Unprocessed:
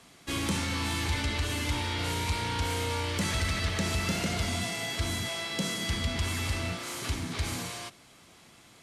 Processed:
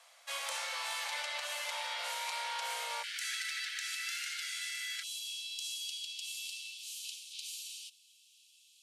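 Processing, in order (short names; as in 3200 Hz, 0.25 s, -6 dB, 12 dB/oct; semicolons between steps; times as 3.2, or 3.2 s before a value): steep high-pass 520 Hz 96 dB/oct, from 3.02 s 1400 Hz, from 5.02 s 2600 Hz; gain -4 dB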